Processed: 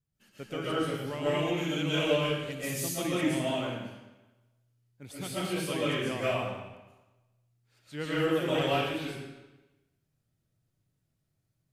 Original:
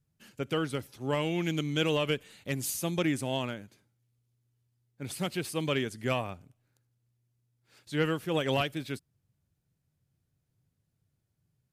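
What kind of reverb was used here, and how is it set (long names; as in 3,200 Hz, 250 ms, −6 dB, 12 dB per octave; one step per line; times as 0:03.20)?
comb and all-pass reverb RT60 1.1 s, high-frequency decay 0.9×, pre-delay 95 ms, DRR −9.5 dB
level −8.5 dB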